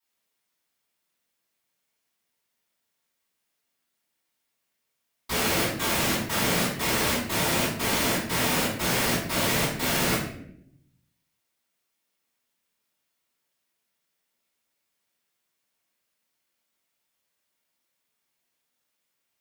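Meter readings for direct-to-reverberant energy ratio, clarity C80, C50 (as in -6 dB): -13.0 dB, 7.0 dB, 2.5 dB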